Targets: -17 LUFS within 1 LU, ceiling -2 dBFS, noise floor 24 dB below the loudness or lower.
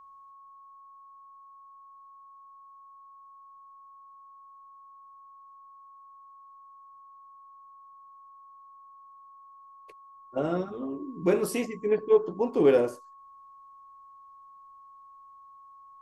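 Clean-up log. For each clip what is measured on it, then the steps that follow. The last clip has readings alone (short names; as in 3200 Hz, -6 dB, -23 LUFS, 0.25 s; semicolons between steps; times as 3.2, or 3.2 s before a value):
steady tone 1100 Hz; tone level -49 dBFS; loudness -27.0 LUFS; peak -10.5 dBFS; loudness target -17.0 LUFS
-> notch 1100 Hz, Q 30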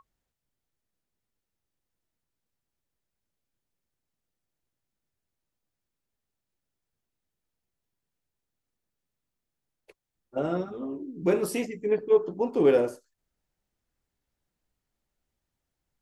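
steady tone none; loudness -27.0 LUFS; peak -10.5 dBFS; loudness target -17.0 LUFS
-> gain +10 dB; limiter -2 dBFS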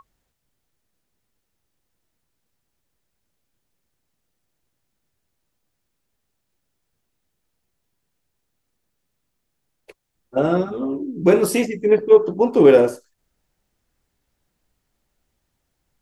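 loudness -17.0 LUFS; peak -2.0 dBFS; noise floor -76 dBFS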